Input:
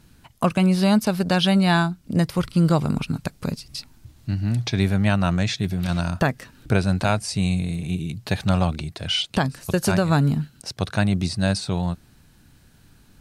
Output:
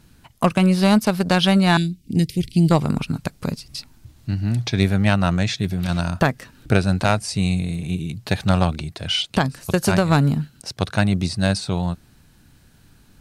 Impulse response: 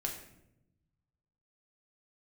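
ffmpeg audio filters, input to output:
-filter_complex "[0:a]asettb=1/sr,asplit=3[s0][s1][s2];[s0]atrim=end=1.774[s3];[s1]atrim=start=1.77:end=2.71,asetpts=PTS-STARTPTS,afade=t=in:d=0.004:c=qsin,afade=t=out:st=0.936:d=0.004:c=qsin,asuperstop=centerf=950:order=8:qfactor=0.54[s4];[s2]atrim=start=2.706[s5];[s3][s4]acrossfade=d=0.004:c1=hsin:c2=qsin[s6];[s6][s5]acrossfade=d=0.004:c1=qsin:c2=hsin,aeval=exprs='0.501*(cos(1*acos(clip(val(0)/0.501,-1,1)))-cos(1*PI/2))+0.0562*(cos(3*acos(clip(val(0)/0.501,-1,1)))-cos(3*PI/2))':c=same,volume=1.68"

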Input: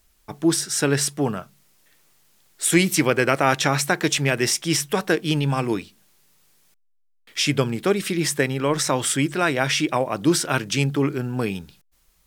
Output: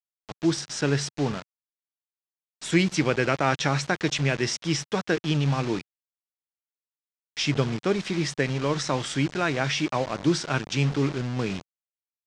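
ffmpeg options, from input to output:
-af "acrusher=bits=4:mix=0:aa=0.000001,lowpass=f=6300:w=0.5412,lowpass=f=6300:w=1.3066,equalizer=f=140:t=o:w=1.3:g=4,volume=0.562"

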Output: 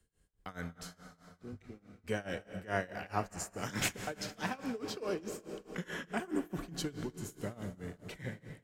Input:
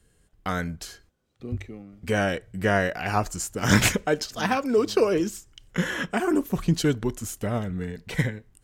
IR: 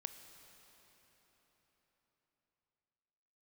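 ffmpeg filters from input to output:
-filter_complex "[0:a]acrossover=split=130|6900[s0][s1][s2];[s0]asoftclip=type=hard:threshold=0.0188[s3];[s3][s1][s2]amix=inputs=3:normalize=0[s4];[1:a]atrim=start_sample=2205[s5];[s4][s5]afir=irnorm=-1:irlink=0,tremolo=f=4.7:d=0.92,volume=0.531"

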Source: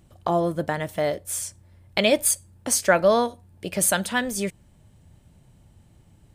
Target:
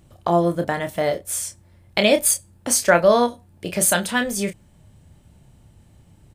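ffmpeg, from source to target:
-filter_complex "[0:a]asplit=2[s0][s1];[s1]adelay=29,volume=0.422[s2];[s0][s2]amix=inputs=2:normalize=0,volume=1.33"

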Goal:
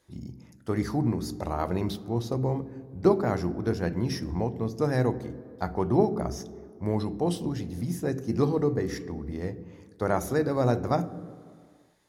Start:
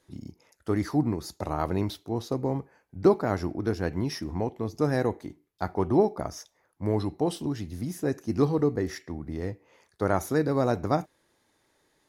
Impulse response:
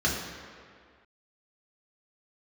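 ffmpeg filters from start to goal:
-filter_complex "[0:a]asplit=2[s0][s1];[1:a]atrim=start_sample=2205,lowshelf=f=500:g=10.5[s2];[s1][s2]afir=irnorm=-1:irlink=0,volume=0.0398[s3];[s0][s3]amix=inputs=2:normalize=0"

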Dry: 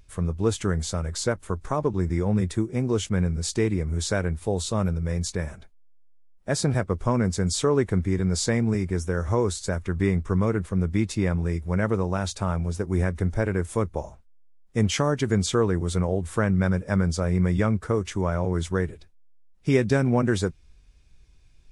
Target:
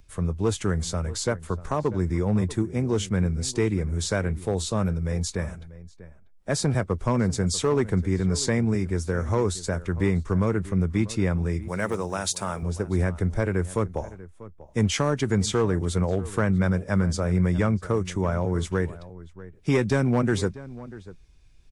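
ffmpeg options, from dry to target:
-filter_complex "[0:a]acrossover=split=160|1200|3100[s0][s1][s2][s3];[s1]volume=7.94,asoftclip=hard,volume=0.126[s4];[s0][s4][s2][s3]amix=inputs=4:normalize=0,asettb=1/sr,asplit=3[s5][s6][s7];[s5]atrim=end=11.684[s8];[s6]atrim=start=11.68:end=12.63,asetpts=PTS-STARTPTS,afade=t=in:d=0.004:c=qsin,afade=t=out:st=0.946:d=0.004:c=qsin,aemphasis=mode=production:type=bsi[s9];[s7]atrim=start=12.626[s10];[s8][s9]acrossfade=d=0.004:c1=hsin:c2=qsin[s11];[s11][s10]acrossfade=d=0.004:c1=qsin:c2=hsin,asplit=2[s12][s13];[s13]adelay=641.4,volume=0.141,highshelf=f=4000:g=-14.4[s14];[s12][s14]amix=inputs=2:normalize=0"

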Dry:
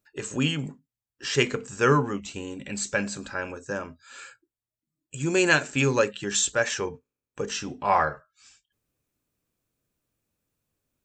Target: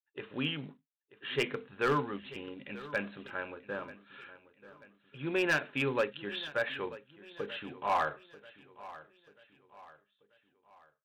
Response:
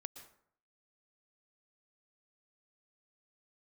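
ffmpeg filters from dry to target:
-af "agate=range=0.0224:threshold=0.00447:ratio=3:detection=peak,highpass=f=250:p=1,aresample=8000,acrusher=bits=5:mode=log:mix=0:aa=0.000001,aresample=44100,asoftclip=type=hard:threshold=0.168,aecho=1:1:937|1874|2811|3748:0.133|0.0587|0.0258|0.0114,volume=0.473"

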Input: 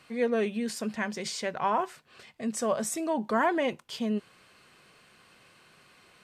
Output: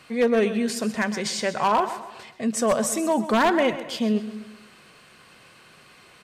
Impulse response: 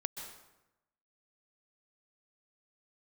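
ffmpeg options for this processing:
-filter_complex "[0:a]aecho=1:1:129|258|387|516:0.211|0.0888|0.0373|0.0157,aeval=exprs='0.106*(abs(mod(val(0)/0.106+3,4)-2)-1)':c=same,asplit=2[s0][s1];[1:a]atrim=start_sample=2205[s2];[s1][s2]afir=irnorm=-1:irlink=0,volume=0.251[s3];[s0][s3]amix=inputs=2:normalize=0,volume=1.78"

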